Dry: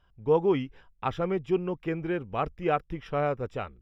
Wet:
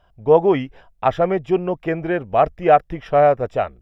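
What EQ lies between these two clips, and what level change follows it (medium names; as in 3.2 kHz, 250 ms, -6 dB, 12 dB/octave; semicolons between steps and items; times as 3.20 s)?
dynamic bell 1.8 kHz, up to +7 dB, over -53 dBFS, Q 4.3; peaking EQ 660 Hz +13.5 dB 0.55 oct; +6.0 dB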